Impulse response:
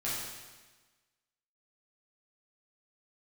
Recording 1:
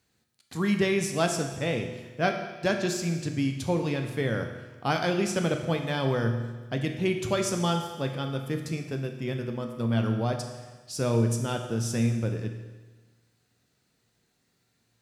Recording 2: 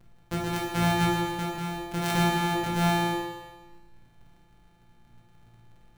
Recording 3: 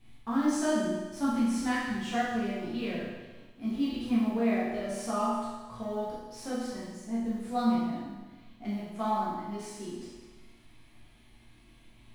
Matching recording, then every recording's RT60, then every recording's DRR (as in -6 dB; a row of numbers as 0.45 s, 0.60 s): 3; 1.3 s, 1.3 s, 1.3 s; 4.0 dB, -3.5 dB, -9.0 dB